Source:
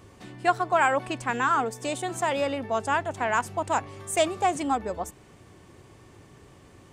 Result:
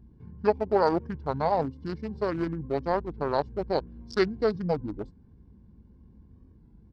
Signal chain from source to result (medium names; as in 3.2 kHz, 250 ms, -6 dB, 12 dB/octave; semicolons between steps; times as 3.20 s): local Wiener filter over 41 samples; pitch shift -9 st; warped record 33 1/3 rpm, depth 100 cents